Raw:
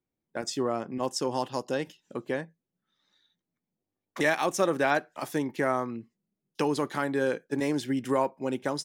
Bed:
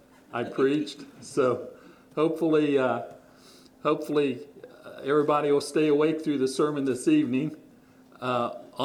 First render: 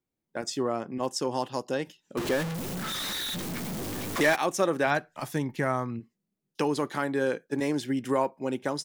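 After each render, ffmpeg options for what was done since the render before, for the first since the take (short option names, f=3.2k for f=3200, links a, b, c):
-filter_complex "[0:a]asettb=1/sr,asplit=3[a][b][c];[a]atrim=end=2.174[d];[b]atrim=start=2.17:end=4.36,asetpts=PTS-STARTPTS,afade=t=in:d=0.004:c=qsin,afade=t=out:st=2.186:d=0.004:c=qsin,aeval=exprs='val(0)+0.5*0.0473*sgn(val(0))':c=same[e];[c]atrim=start=4.356[f];[d][e]acrossfade=d=0.004:c1=hsin:c2=qsin[g];[g][f]acrossfade=d=0.004:c1=qsin:c2=hsin,asplit=3[h][i][j];[h]afade=t=out:st=4.86:d=0.02[k];[i]asubboost=boost=4.5:cutoff=150,afade=t=in:st=4.86:d=0.02,afade=t=out:st=5.99:d=0.02[l];[j]afade=t=in:st=5.99:d=0.02[m];[k][l][m]amix=inputs=3:normalize=0"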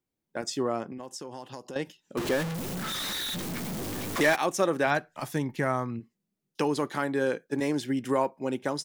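-filter_complex "[0:a]asettb=1/sr,asplit=3[a][b][c];[a]atrim=end=0.924[d];[b]atrim=start=0.92:end=1.76,asetpts=PTS-STARTPTS,afade=t=in:d=0.004:c=qsin,afade=t=out:st=0.836:d=0.004:c=qsin,acompressor=threshold=-36dB:ratio=6:attack=3.2:release=140:knee=1:detection=peak[e];[c]atrim=start=1.756[f];[d][e]acrossfade=d=0.004:c1=hsin:c2=qsin[g];[g][f]acrossfade=d=0.004:c1=qsin:c2=hsin"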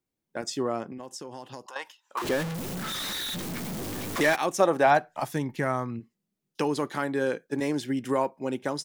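-filter_complex "[0:a]asettb=1/sr,asplit=3[a][b][c];[a]atrim=end=1.664[d];[b]atrim=start=1.66:end=2.22,asetpts=PTS-STARTPTS,afade=t=in:d=0.004:c=qsin,afade=t=out:st=0.556:d=0.004:c=qsin,highpass=f=1k:t=q:w=4.8[e];[c]atrim=start=2.216[f];[d][e]acrossfade=d=0.004:c1=hsin:c2=qsin[g];[g][f]acrossfade=d=0.004:c1=qsin:c2=hsin,asettb=1/sr,asplit=3[h][i][j];[h]atrim=end=4.604[k];[i]atrim=start=4.6:end=5.25,asetpts=PTS-STARTPTS,afade=t=in:d=0.004:c=qsin,afade=t=out:st=0.646:d=0.004:c=qsin,equalizer=f=770:w=1.7:g=9.5[l];[j]atrim=start=5.246[m];[k][l]acrossfade=d=0.004:c1=hsin:c2=qsin[n];[n][m]acrossfade=d=0.004:c1=qsin:c2=hsin"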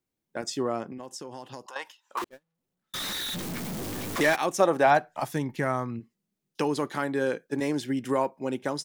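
-filter_complex "[0:a]asettb=1/sr,asplit=3[a][b][c];[a]atrim=end=2.244[d];[b]atrim=start=2.24:end=2.94,asetpts=PTS-STARTPTS,afade=t=in:d=0.004:c=qsin,afade=t=out:st=0.696:d=0.004:c=qsin,agate=range=-50dB:threshold=-22dB:ratio=16:release=100:detection=peak[e];[c]atrim=start=2.936[f];[d][e]acrossfade=d=0.004:c1=hsin:c2=qsin[g];[g][f]acrossfade=d=0.004:c1=qsin:c2=hsin"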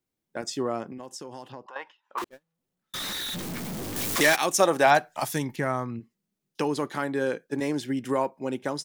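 -filter_complex "[0:a]asettb=1/sr,asplit=3[a][b][c];[a]atrim=end=1.524[d];[b]atrim=start=1.52:end=2.18,asetpts=PTS-STARTPTS,afade=t=in:d=0.004:c=qsin,afade=t=out:st=0.656:d=0.004:c=qsin,lowpass=2.3k[e];[c]atrim=start=2.176[f];[d][e]acrossfade=d=0.004:c1=hsin:c2=qsin[g];[g][f]acrossfade=d=0.004:c1=qsin:c2=hsin,asettb=1/sr,asplit=3[h][i][j];[h]atrim=end=3.964[k];[i]atrim=start=3.96:end=5.56,asetpts=PTS-STARTPTS,afade=t=in:d=0.004:c=qsin,afade=t=out:st=1.596:d=0.004:c=qsin,highshelf=f=2.5k:g=10.5[l];[j]atrim=start=5.556[m];[k][l]acrossfade=d=0.004:c1=hsin:c2=qsin[n];[n][m]acrossfade=d=0.004:c1=qsin:c2=hsin"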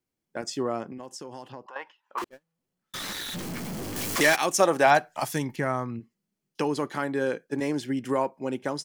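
-af "highshelf=f=11k:g=-4.5,bandreject=f=3.7k:w=14"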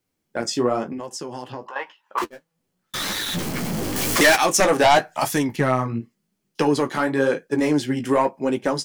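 -af "aeval=exprs='0.473*sin(PI/2*2.51*val(0)/0.473)':c=same,flanger=delay=9.2:depth=9.5:regen=-30:speed=0.93:shape=triangular"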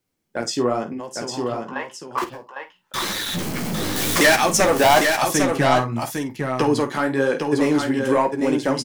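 -filter_complex "[0:a]asplit=2[a][b];[b]adelay=50,volume=-13dB[c];[a][c]amix=inputs=2:normalize=0,aecho=1:1:804:0.562"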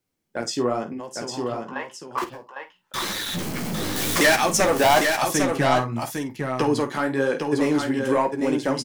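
-af "volume=-2.5dB"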